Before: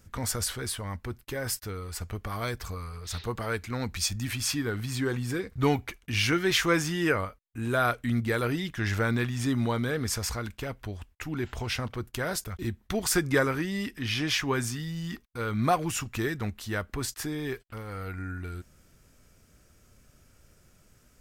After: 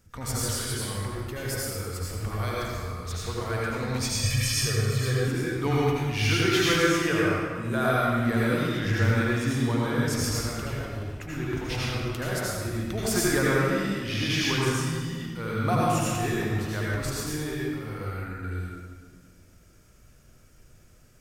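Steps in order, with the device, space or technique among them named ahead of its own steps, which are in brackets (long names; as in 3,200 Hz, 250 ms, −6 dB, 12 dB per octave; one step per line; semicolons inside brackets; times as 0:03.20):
stairwell (convolution reverb RT60 1.7 s, pre-delay 71 ms, DRR −6 dB)
0:04.23–0:05.28: comb filter 1.7 ms, depth 82%
level −4.5 dB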